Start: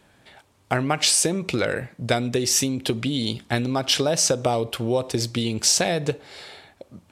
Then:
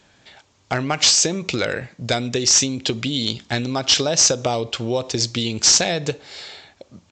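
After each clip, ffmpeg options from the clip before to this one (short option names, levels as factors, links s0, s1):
-af "highshelf=f=3400:g=11,aresample=16000,volume=2.82,asoftclip=hard,volume=0.355,aresample=44100"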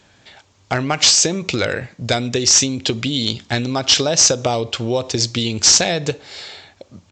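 -af "equalizer=f=95:t=o:w=0.22:g=7,volume=1.33"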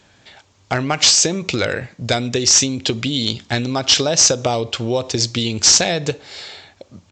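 -af anull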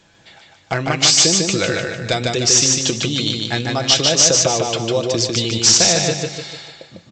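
-filter_complex "[0:a]aecho=1:1:6:0.42,asplit=2[s0][s1];[s1]aecho=0:1:150|300|450|600|750|900:0.708|0.304|0.131|0.0563|0.0242|0.0104[s2];[s0][s2]amix=inputs=2:normalize=0,volume=0.841"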